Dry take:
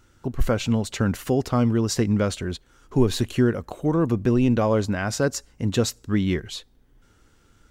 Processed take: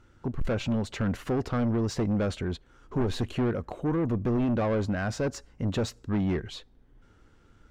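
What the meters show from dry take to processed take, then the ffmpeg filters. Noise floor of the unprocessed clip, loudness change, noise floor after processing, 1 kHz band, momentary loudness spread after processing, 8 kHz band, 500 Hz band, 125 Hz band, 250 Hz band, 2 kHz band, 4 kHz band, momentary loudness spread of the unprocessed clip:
−59 dBFS, −6.0 dB, −60 dBFS, −5.5 dB, 8 LU, −12.5 dB, −6.0 dB, −5.5 dB, −5.5 dB, −5.5 dB, −8.0 dB, 8 LU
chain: -af "asoftclip=type=tanh:threshold=-22.5dB,aemphasis=mode=reproduction:type=75kf"

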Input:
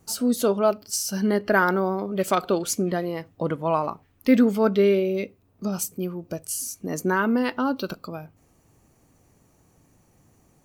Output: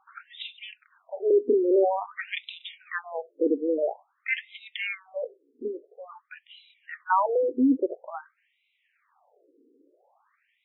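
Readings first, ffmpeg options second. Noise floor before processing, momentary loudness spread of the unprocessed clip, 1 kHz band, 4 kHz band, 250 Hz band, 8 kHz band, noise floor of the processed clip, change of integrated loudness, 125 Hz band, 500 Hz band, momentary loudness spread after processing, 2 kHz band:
−62 dBFS, 12 LU, −3.5 dB, −4.5 dB, −6.5 dB, below −40 dB, −74 dBFS, −3.0 dB, below −30 dB, −2.5 dB, 20 LU, −4.5 dB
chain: -af "afftfilt=real='re*between(b*sr/1024,340*pow(2900/340,0.5+0.5*sin(2*PI*0.49*pts/sr))/1.41,340*pow(2900/340,0.5+0.5*sin(2*PI*0.49*pts/sr))*1.41)':imag='im*between(b*sr/1024,340*pow(2900/340,0.5+0.5*sin(2*PI*0.49*pts/sr))/1.41,340*pow(2900/340,0.5+0.5*sin(2*PI*0.49*pts/sr))*1.41)':win_size=1024:overlap=0.75,volume=6dB"

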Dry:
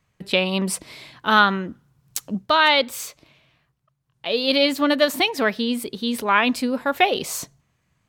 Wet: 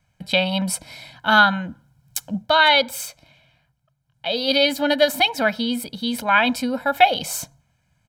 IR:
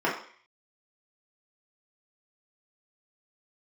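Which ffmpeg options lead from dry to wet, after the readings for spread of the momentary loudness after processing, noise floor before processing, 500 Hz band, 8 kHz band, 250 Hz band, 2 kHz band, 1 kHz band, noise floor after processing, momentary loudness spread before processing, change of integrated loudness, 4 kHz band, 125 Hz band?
15 LU, −70 dBFS, +0.5 dB, +1.5 dB, −1.0 dB, +2.5 dB, +2.0 dB, −68 dBFS, 15 LU, +1.5 dB, +2.0 dB, can't be measured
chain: -filter_complex "[0:a]aecho=1:1:1.3:0.96,asplit=2[link_01][link_02];[1:a]atrim=start_sample=2205,lowpass=1100[link_03];[link_02][link_03]afir=irnorm=-1:irlink=0,volume=-30dB[link_04];[link_01][link_04]amix=inputs=2:normalize=0,volume=-1.5dB"

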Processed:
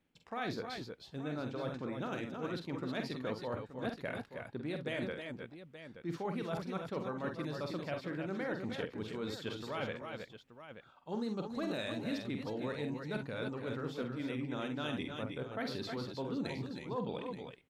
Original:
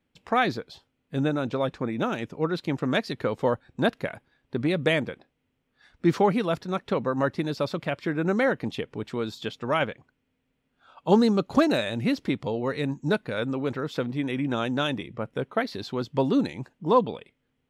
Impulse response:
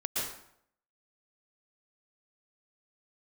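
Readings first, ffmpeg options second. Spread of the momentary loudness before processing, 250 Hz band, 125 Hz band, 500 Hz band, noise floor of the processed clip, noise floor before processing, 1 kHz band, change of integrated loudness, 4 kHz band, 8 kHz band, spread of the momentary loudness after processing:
11 LU, −12.5 dB, −11.5 dB, −13.0 dB, −61 dBFS, −76 dBFS, −14.5 dB, −13.0 dB, −10.5 dB, can't be measured, 7 LU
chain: -af "areverse,acompressor=threshold=-35dB:ratio=6,areverse,aecho=1:1:47|65|303|319|877:0.447|0.15|0.237|0.501|0.251,volume=-2.5dB"

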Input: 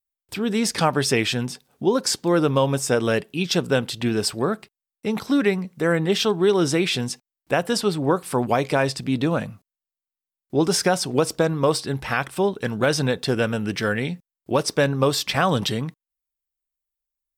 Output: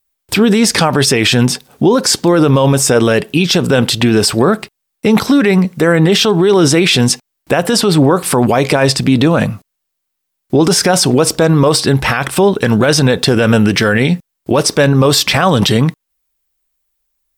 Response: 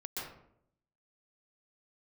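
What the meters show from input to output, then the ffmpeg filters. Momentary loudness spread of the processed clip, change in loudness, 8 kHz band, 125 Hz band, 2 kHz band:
5 LU, +11.0 dB, +12.5 dB, +13.0 dB, +10.0 dB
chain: -af "alimiter=level_in=18.5dB:limit=-1dB:release=50:level=0:latency=1,volume=-1dB"

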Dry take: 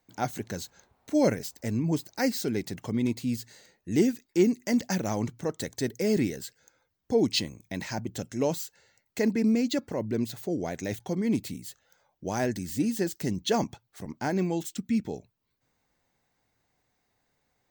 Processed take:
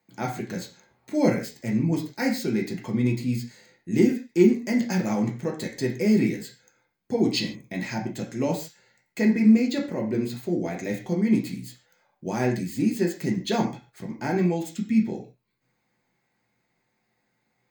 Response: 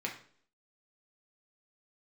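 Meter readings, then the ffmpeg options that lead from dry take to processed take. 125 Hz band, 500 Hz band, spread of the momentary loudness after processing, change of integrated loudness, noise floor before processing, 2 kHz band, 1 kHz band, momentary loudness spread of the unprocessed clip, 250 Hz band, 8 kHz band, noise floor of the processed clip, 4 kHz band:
+4.5 dB, +2.0 dB, 14 LU, +4.0 dB, −76 dBFS, +4.0 dB, +1.5 dB, 14 LU, +5.0 dB, −2.5 dB, −75 dBFS, 0.0 dB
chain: -filter_complex "[1:a]atrim=start_sample=2205,afade=type=out:start_time=0.21:duration=0.01,atrim=end_sample=9702[link_01];[0:a][link_01]afir=irnorm=-1:irlink=0"

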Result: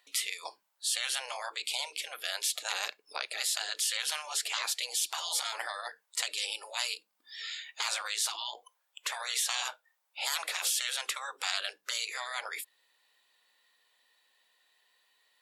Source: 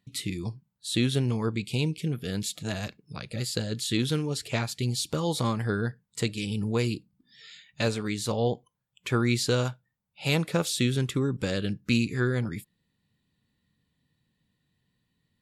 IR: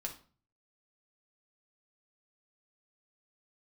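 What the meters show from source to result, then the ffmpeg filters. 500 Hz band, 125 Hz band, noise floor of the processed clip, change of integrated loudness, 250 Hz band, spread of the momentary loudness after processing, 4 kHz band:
−17.5 dB, below −40 dB, −78 dBFS, −4.0 dB, below −40 dB, 10 LU, +2.0 dB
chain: -filter_complex "[0:a]afftfilt=real='re*lt(hypot(re,im),0.0447)':imag='im*lt(hypot(re,im),0.0447)':win_size=1024:overlap=0.75,highpass=frequency=610:width=0.5412,highpass=frequency=610:width=1.3066,asplit=2[link_01][link_02];[link_02]acompressor=threshold=-51dB:ratio=6,volume=0.5dB[link_03];[link_01][link_03]amix=inputs=2:normalize=0,volume=5dB"

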